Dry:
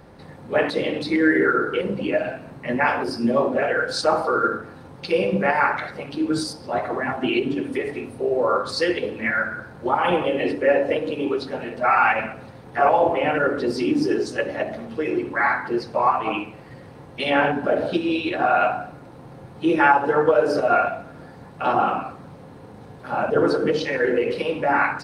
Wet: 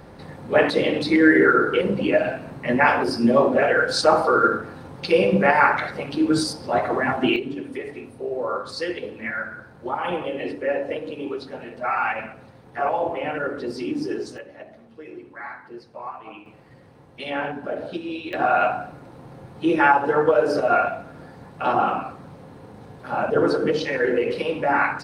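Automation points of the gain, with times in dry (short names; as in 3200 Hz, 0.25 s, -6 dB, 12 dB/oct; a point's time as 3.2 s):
+3 dB
from 7.36 s -6 dB
from 14.38 s -15.5 dB
from 16.46 s -8 dB
from 18.33 s -0.5 dB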